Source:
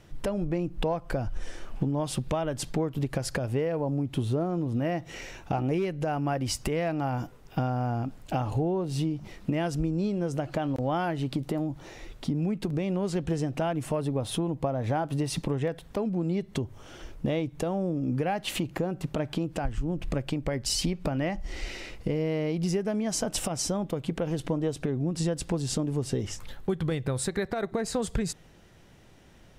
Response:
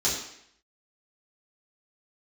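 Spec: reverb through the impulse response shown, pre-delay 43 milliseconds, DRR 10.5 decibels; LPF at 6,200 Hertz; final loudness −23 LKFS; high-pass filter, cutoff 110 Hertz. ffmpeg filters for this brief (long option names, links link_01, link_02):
-filter_complex "[0:a]highpass=110,lowpass=6200,asplit=2[link_01][link_02];[1:a]atrim=start_sample=2205,adelay=43[link_03];[link_02][link_03]afir=irnorm=-1:irlink=0,volume=-21dB[link_04];[link_01][link_04]amix=inputs=2:normalize=0,volume=7.5dB"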